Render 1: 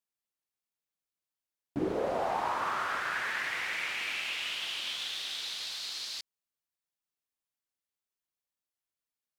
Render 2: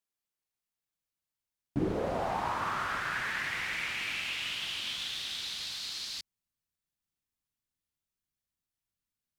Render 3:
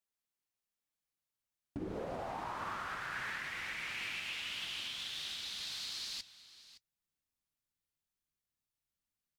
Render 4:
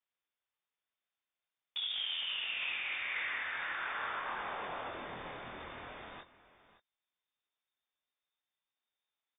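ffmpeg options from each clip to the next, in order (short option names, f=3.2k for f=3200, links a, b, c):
-af "asubboost=boost=4.5:cutoff=230"
-af "alimiter=level_in=5dB:limit=-24dB:level=0:latency=1:release=418,volume=-5dB,flanger=delay=3.4:depth=5.3:regen=-72:speed=1.1:shape=sinusoidal,aecho=1:1:566:0.15,volume=2dB"
-filter_complex "[0:a]asplit=2[a][b];[b]aeval=exprs='(mod(44.7*val(0)+1,2)-1)/44.7':c=same,volume=-5dB[c];[a][c]amix=inputs=2:normalize=0,lowpass=f=3.1k:t=q:w=0.5098,lowpass=f=3.1k:t=q:w=0.6013,lowpass=f=3.1k:t=q:w=0.9,lowpass=f=3.1k:t=q:w=2.563,afreqshift=-3700,asplit=2[d][e];[e]adelay=24,volume=-4.5dB[f];[d][f]amix=inputs=2:normalize=0,volume=-1.5dB"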